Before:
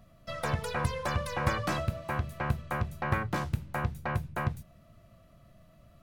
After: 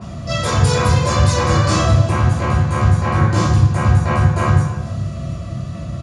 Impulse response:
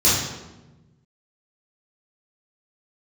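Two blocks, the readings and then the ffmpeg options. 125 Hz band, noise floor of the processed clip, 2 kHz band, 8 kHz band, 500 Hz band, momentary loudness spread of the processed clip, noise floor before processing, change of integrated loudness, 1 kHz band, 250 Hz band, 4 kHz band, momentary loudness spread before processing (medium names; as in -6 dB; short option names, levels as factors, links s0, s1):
+20.0 dB, -28 dBFS, +11.0 dB, +20.5 dB, +15.0 dB, 11 LU, -59 dBFS, +17.0 dB, +14.0 dB, +17.5 dB, +17.5 dB, 4 LU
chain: -filter_complex "[0:a]asplit=2[s0][s1];[s1]acompressor=threshold=0.00708:ratio=6,volume=1[s2];[s0][s2]amix=inputs=2:normalize=0,alimiter=limit=0.0891:level=0:latency=1:release=172,acompressor=mode=upward:threshold=0.0158:ratio=2.5,asplit=2[s3][s4];[s4]adelay=274.1,volume=0.178,highshelf=f=4000:g=-6.17[s5];[s3][s5]amix=inputs=2:normalize=0[s6];[1:a]atrim=start_sample=2205[s7];[s6][s7]afir=irnorm=-1:irlink=0,aresample=22050,aresample=44100,adynamicequalizer=threshold=0.02:dfrequency=4100:dqfactor=0.7:tfrequency=4100:tqfactor=0.7:attack=5:release=100:ratio=0.375:range=3.5:mode=boostabove:tftype=highshelf,volume=0.531"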